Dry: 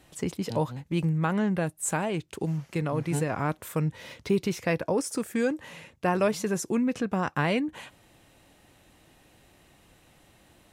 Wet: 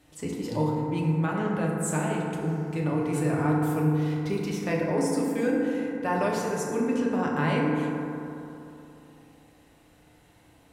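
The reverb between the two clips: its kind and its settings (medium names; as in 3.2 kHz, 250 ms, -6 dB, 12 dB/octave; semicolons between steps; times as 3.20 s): FDN reverb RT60 3 s, high-frequency decay 0.3×, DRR -3.5 dB; trim -5 dB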